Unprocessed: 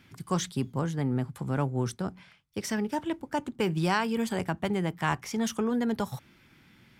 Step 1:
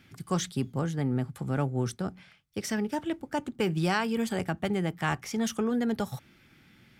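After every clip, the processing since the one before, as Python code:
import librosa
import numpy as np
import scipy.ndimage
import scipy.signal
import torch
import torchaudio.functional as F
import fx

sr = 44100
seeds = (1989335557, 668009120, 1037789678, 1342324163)

y = fx.notch(x, sr, hz=990.0, q=7.0)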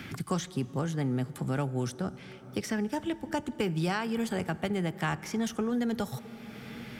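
y = fx.rev_plate(x, sr, seeds[0], rt60_s=2.9, hf_ratio=0.45, predelay_ms=0, drr_db=17.5)
y = fx.band_squash(y, sr, depth_pct=70)
y = F.gain(torch.from_numpy(y), -2.0).numpy()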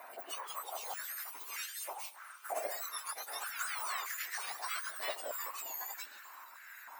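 y = fx.octave_mirror(x, sr, pivot_hz=1800.0)
y = fx.echo_pitch(y, sr, ms=211, semitones=2, count=3, db_per_echo=-3.0)
y = fx.filter_held_highpass(y, sr, hz=3.2, low_hz=700.0, high_hz=1700.0)
y = F.gain(torch.from_numpy(y), -7.0).numpy()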